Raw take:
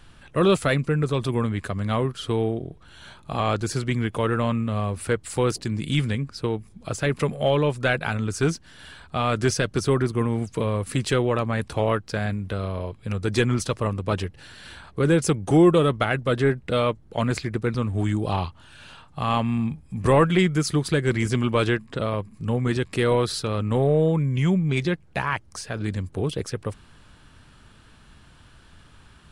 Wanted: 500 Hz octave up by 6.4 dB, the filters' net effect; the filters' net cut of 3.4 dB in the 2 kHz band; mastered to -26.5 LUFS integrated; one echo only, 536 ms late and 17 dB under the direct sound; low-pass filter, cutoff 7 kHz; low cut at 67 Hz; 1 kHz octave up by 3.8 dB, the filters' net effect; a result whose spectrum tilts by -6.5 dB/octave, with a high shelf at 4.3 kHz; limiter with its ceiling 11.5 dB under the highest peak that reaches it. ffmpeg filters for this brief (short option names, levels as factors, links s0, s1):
-af "highpass=67,lowpass=7000,equalizer=f=500:t=o:g=7,equalizer=f=1000:t=o:g=4.5,equalizer=f=2000:t=o:g=-7.5,highshelf=f=4300:g=3,alimiter=limit=0.211:level=0:latency=1,aecho=1:1:536:0.141,volume=0.794"